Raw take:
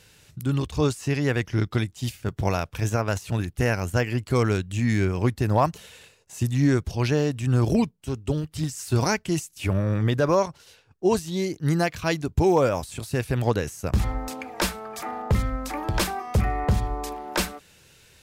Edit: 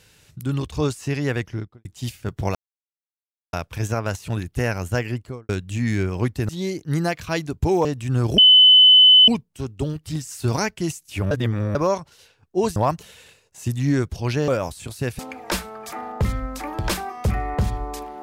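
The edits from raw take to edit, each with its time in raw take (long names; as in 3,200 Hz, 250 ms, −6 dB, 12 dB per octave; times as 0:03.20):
0:01.34–0:01.85: fade out and dull
0:02.55: splice in silence 0.98 s
0:04.07–0:04.51: fade out and dull
0:05.51–0:07.23: swap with 0:11.24–0:12.60
0:07.76: insert tone 3,020 Hz −7.5 dBFS 0.90 s
0:09.79–0:10.23: reverse
0:13.31–0:14.29: remove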